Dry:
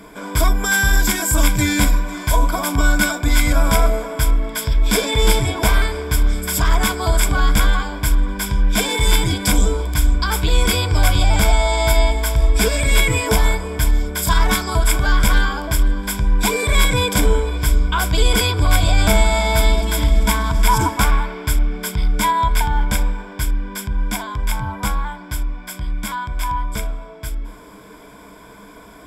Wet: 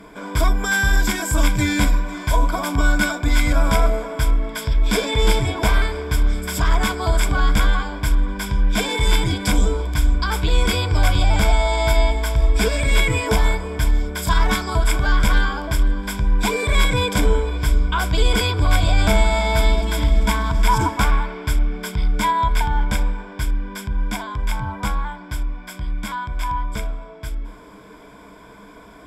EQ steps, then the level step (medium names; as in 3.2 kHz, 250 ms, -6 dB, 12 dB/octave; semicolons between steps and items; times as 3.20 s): treble shelf 8.4 kHz -11.5 dB; -1.5 dB